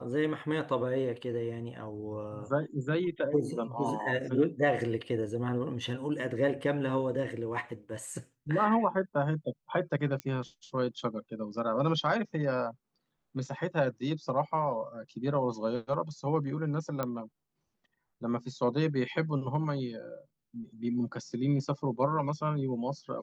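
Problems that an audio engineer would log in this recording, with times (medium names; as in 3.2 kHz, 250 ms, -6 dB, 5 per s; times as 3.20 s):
10.20 s: pop -21 dBFS
17.03 s: pop -18 dBFS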